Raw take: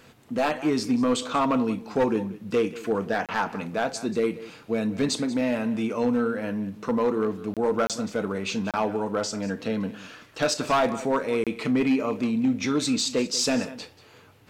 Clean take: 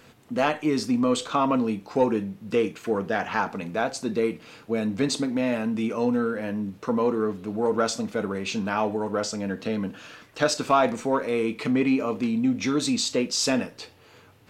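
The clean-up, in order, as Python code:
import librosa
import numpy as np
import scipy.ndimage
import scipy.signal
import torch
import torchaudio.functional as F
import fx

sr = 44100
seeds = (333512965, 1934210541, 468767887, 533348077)

y = fx.fix_declip(x, sr, threshold_db=-16.5)
y = fx.fix_interpolate(y, sr, at_s=(3.26, 7.54, 7.87, 8.71, 11.44), length_ms=27.0)
y = fx.fix_echo_inverse(y, sr, delay_ms=186, level_db=-17.0)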